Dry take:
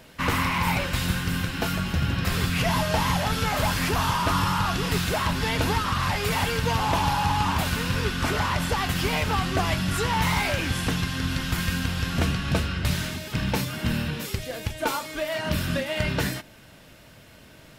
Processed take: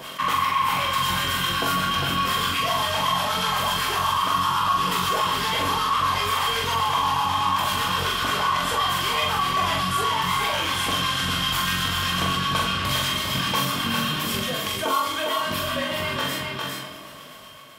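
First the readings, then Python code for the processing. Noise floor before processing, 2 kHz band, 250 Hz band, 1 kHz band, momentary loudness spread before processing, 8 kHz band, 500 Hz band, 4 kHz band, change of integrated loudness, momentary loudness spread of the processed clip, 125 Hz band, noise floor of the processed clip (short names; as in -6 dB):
-50 dBFS, +2.0 dB, -4.0 dB, +6.0 dB, 5 LU, +3.0 dB, -1.0 dB, +7.0 dB, +3.0 dB, 4 LU, -6.5 dB, -39 dBFS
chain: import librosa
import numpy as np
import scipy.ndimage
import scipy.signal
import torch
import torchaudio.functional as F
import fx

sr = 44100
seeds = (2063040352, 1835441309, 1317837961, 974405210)

p1 = fx.fade_out_tail(x, sr, length_s=4.57)
p2 = fx.highpass(p1, sr, hz=390.0, slope=6)
p3 = fx.high_shelf(p2, sr, hz=9000.0, db=3.5)
p4 = fx.rider(p3, sr, range_db=4, speed_s=0.5)
p5 = fx.harmonic_tremolo(p4, sr, hz=8.0, depth_pct=70, crossover_hz=740.0)
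p6 = fx.small_body(p5, sr, hz=(1100.0, 3200.0), ring_ms=45, db=17)
p7 = fx.chorus_voices(p6, sr, voices=4, hz=0.69, base_ms=21, depth_ms=1.2, mix_pct=35)
p8 = fx.doubler(p7, sr, ms=44.0, db=-3.0)
p9 = p8 + fx.echo_single(p8, sr, ms=404, db=-7.0, dry=0)
p10 = fx.rev_freeverb(p9, sr, rt60_s=0.86, hf_ratio=0.7, predelay_ms=0, drr_db=9.5)
y = fx.env_flatten(p10, sr, amount_pct=50)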